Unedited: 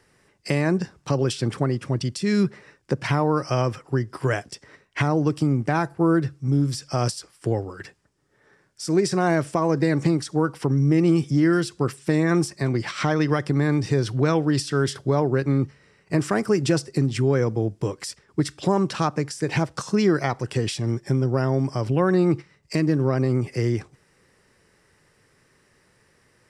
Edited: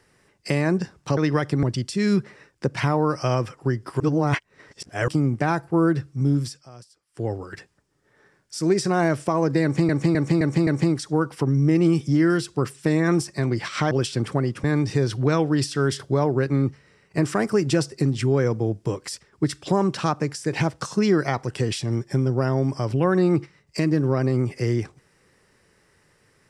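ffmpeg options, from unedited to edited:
-filter_complex "[0:a]asplit=13[s0][s1][s2][s3][s4][s5][s6][s7][s8][s9][s10][s11][s12];[s0]atrim=end=1.172[s13];[s1]atrim=start=13.138:end=13.602[s14];[s2]atrim=start=1.898:end=4.272[s15];[s3]atrim=start=4.268:end=5.352,asetpts=PTS-STARTPTS,areverse[s16];[s4]atrim=start=5.348:end=6.93,asetpts=PTS-STARTPTS,afade=t=out:st=1.312:d=0.27:silence=0.0841395[s17];[s5]atrim=start=6.93:end=7.35,asetpts=PTS-STARTPTS,volume=0.0841[s18];[s6]atrim=start=7.35:end=10.162,asetpts=PTS-STARTPTS,afade=t=in:d=0.27:silence=0.0841395[s19];[s7]atrim=start=9.898:end=10.162[s20];[s8]atrim=start=9.898:end=10.162[s21];[s9]atrim=start=9.898:end=10.162[s22];[s10]atrim=start=9.898:end=13.142[s23];[s11]atrim=start=1.168:end=1.902[s24];[s12]atrim=start=13.598[s25];[s13][s14]acrossfade=d=0.004:c1=hsin:c2=hsin[s26];[s26][s15]acrossfade=d=0.004:c1=hsin:c2=hsin[s27];[s27][s16]acrossfade=d=0.004:c1=hsin:c2=hsin[s28];[s17][s18][s19]concat=n=3:v=0:a=1[s29];[s28][s29]acrossfade=d=0.004:c1=hsin:c2=hsin[s30];[s30][s20]acrossfade=d=0.004:c1=hsin:c2=hsin[s31];[s31][s21]acrossfade=d=0.004:c1=hsin:c2=hsin[s32];[s32][s22]acrossfade=d=0.004:c1=hsin:c2=hsin[s33];[s33][s23]acrossfade=d=0.004:c1=hsin:c2=hsin[s34];[s34][s24]acrossfade=d=0.004:c1=hsin:c2=hsin[s35];[s35][s25]acrossfade=d=0.004:c1=hsin:c2=hsin"

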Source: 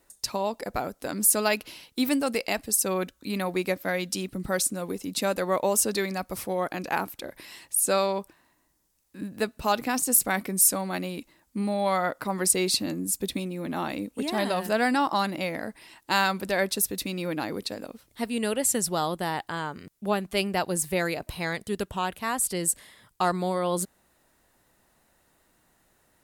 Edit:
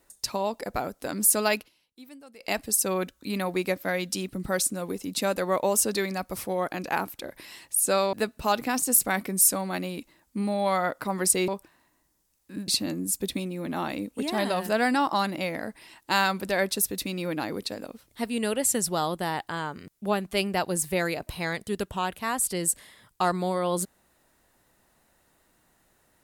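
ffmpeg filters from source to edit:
-filter_complex "[0:a]asplit=6[s0][s1][s2][s3][s4][s5];[s0]atrim=end=1.69,asetpts=PTS-STARTPTS,afade=t=out:st=1.57:d=0.12:silence=0.0749894[s6];[s1]atrim=start=1.69:end=2.39,asetpts=PTS-STARTPTS,volume=0.075[s7];[s2]atrim=start=2.39:end=8.132,asetpts=PTS-STARTPTS,afade=t=in:d=0.12:silence=0.0749894[s8];[s3]atrim=start=9.328:end=12.682[s9];[s4]atrim=start=8.128:end=9.332[s10];[s5]atrim=start=12.678[s11];[s6][s7][s8]concat=n=3:v=0:a=1[s12];[s12][s9]acrossfade=d=0.004:c1=hsin:c2=hsin[s13];[s13][s10]acrossfade=d=0.004:c1=hsin:c2=hsin[s14];[s14][s11]acrossfade=d=0.004:c1=hsin:c2=hsin"

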